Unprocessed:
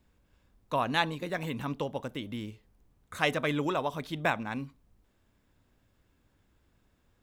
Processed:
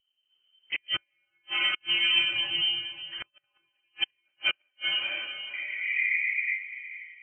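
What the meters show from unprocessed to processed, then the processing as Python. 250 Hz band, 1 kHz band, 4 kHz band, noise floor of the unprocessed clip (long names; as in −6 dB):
−18.0 dB, −12.5 dB, +15.5 dB, −71 dBFS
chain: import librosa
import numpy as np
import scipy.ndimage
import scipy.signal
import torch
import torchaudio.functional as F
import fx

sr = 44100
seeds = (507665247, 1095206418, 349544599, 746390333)

p1 = fx.block_float(x, sr, bits=3)
p2 = fx.lpc_monotone(p1, sr, seeds[0], pitch_hz=230.0, order=10)
p3 = 10.0 ** (-28.0 / 20.0) * np.tanh(p2 / 10.0 ** (-28.0 / 20.0))
p4 = p2 + (p3 * 10.0 ** (-6.5 / 20.0))
p5 = fx.spec_paint(p4, sr, seeds[1], shape='noise', start_s=5.53, length_s=0.65, low_hz=590.0, high_hz=1200.0, level_db=-34.0)
p6 = fx.freq_invert(p5, sr, carrier_hz=3100)
p7 = fx.echo_diffused(p6, sr, ms=497, feedback_pct=41, wet_db=-8.0)
p8 = fx.rev_gated(p7, sr, seeds[2], gate_ms=430, shape='rising', drr_db=-4.5)
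p9 = fx.gate_flip(p8, sr, shuts_db=-14.0, range_db=-37)
y = fx.spectral_expand(p9, sr, expansion=1.5)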